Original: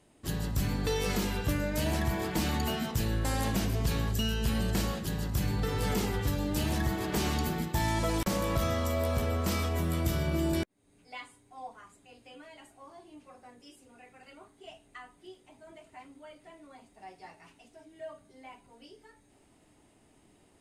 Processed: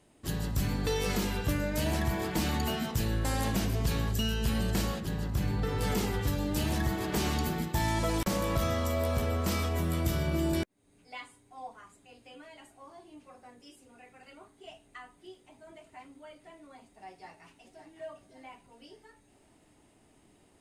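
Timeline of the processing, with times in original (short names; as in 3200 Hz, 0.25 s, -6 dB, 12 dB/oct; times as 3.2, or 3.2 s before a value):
5–5.81 high shelf 3800 Hz -7.5 dB
17.09–17.88 echo throw 0.56 s, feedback 50%, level -9.5 dB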